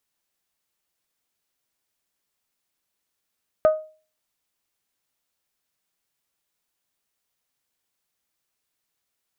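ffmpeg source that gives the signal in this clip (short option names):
-f lavfi -i "aevalsrc='0.316*pow(10,-3*t/0.38)*sin(2*PI*624*t)+0.0794*pow(10,-3*t/0.234)*sin(2*PI*1248*t)+0.02*pow(10,-3*t/0.206)*sin(2*PI*1497.6*t)+0.00501*pow(10,-3*t/0.176)*sin(2*PI*1872*t)+0.00126*pow(10,-3*t/0.144)*sin(2*PI*2496*t)':d=0.89:s=44100"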